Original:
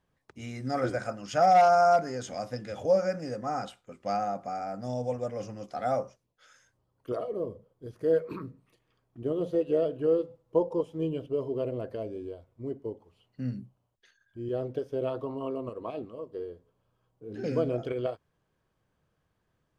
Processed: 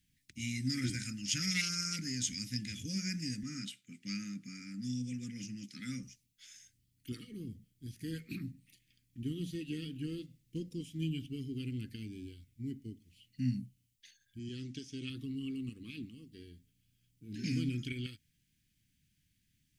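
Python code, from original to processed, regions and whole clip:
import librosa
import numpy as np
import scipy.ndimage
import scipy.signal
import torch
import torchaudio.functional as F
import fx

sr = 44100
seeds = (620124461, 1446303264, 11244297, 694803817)

y = fx.chain(x, sr, fx.highpass(hz=130.0, slope=24),
    fx.high_shelf(hz=3700.0, db=-6.0), at=(3.43, 6.03))
y = fx.chain(y, sr, fx.lowpass_res(hz=6500.0, q=2.4),
    fx.low_shelf(hz=110.0, db=-11.5), at=(14.39, 15.1))
y = scipy.signal.sosfilt(scipy.signal.ellip(3, 1.0, 80, [260.0, 2100.0], 'bandstop', fs=sr, output='sos'), y)
y = fx.high_shelf(y, sr, hz=3100.0, db=11.0)
y = y * librosa.db_to_amplitude(1.0)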